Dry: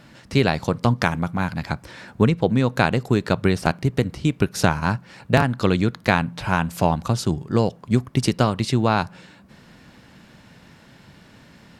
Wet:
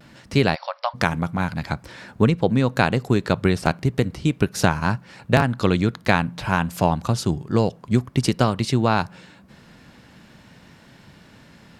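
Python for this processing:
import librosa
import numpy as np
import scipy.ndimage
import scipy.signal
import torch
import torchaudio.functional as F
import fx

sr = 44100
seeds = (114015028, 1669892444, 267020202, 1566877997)

y = fx.brickwall_bandpass(x, sr, low_hz=520.0, high_hz=5700.0, at=(0.54, 0.94), fade=0.02)
y = fx.vibrato(y, sr, rate_hz=0.49, depth_cents=26.0)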